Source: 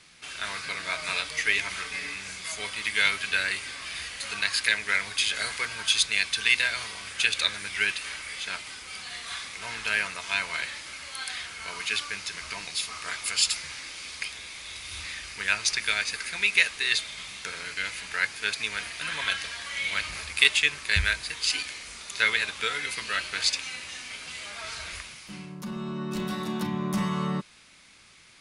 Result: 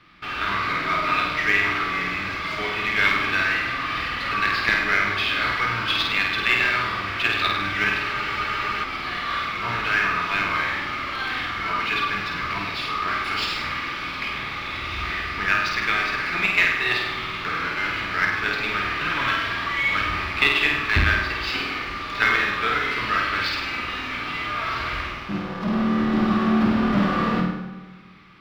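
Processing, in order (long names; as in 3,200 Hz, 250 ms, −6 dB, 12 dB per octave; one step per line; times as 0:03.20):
each half-wave held at its own peak
parametric band 420 Hz −9 dB 1.9 octaves
notch filter 6,400 Hz, Q 8.6
hollow resonant body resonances 310/1,200 Hz, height 13 dB, ringing for 30 ms
in parallel at −5 dB: log-companded quantiser 2 bits
on the sum: soft clipping −6 dBFS, distortion −12 dB
high-frequency loss of the air 280 metres
flutter between parallel walls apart 8.6 metres, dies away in 0.77 s
on a send at −8.5 dB: convolution reverb RT60 1.5 s, pre-delay 4 ms
on the sum: frozen spectrum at 0:08.16, 0.67 s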